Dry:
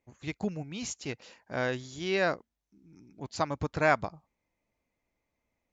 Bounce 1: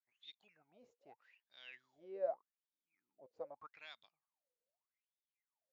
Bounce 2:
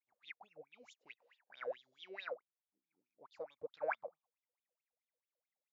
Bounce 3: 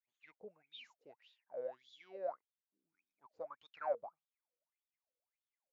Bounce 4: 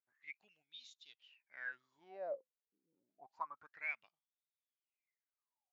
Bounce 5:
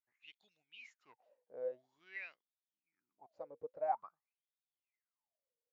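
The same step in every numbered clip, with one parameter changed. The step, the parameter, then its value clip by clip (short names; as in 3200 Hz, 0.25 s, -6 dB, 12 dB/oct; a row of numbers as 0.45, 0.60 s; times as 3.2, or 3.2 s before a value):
wah, rate: 0.82, 4.6, 1.7, 0.28, 0.49 Hz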